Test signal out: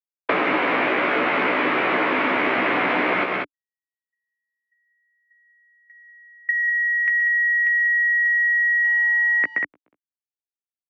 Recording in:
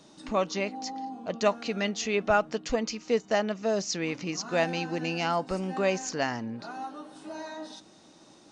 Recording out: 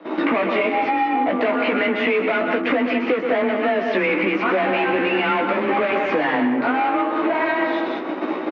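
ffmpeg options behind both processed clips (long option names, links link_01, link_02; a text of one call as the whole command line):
ffmpeg -i in.wav -filter_complex "[0:a]asplit=2[link_01][link_02];[link_02]highpass=frequency=720:poles=1,volume=34dB,asoftclip=type=tanh:threshold=-11dB[link_03];[link_01][link_03]amix=inputs=2:normalize=0,lowpass=frequency=1500:poles=1,volume=-6dB,asplit=2[link_04][link_05];[link_05]adynamicsmooth=sensitivity=5:basefreq=590,volume=-1dB[link_06];[link_04][link_06]amix=inputs=2:normalize=0,anlmdn=0.631,agate=range=-22dB:threshold=-29dB:ratio=16:detection=peak,aecho=1:1:125.4|189.5:0.355|0.355,afreqshift=24,asoftclip=type=hard:threshold=-9.5dB,highpass=230,equalizer=frequency=290:width_type=q:width=4:gain=7,equalizer=frequency=800:width_type=q:width=4:gain=-4,equalizer=frequency=2200:width_type=q:width=4:gain=7,lowpass=frequency=3000:width=0.5412,lowpass=frequency=3000:width=1.3066,asplit=2[link_07][link_08];[link_08]adelay=16,volume=-4.5dB[link_09];[link_07][link_09]amix=inputs=2:normalize=0,acompressor=threshold=-25dB:ratio=6,volume=7dB" out.wav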